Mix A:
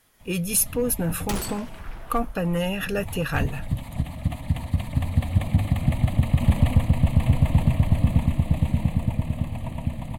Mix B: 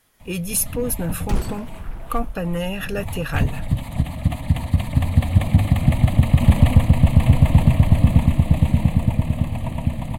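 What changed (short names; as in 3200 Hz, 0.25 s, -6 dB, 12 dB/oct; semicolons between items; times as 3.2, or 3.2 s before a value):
first sound +5.5 dB; second sound: add tilt -2.5 dB/oct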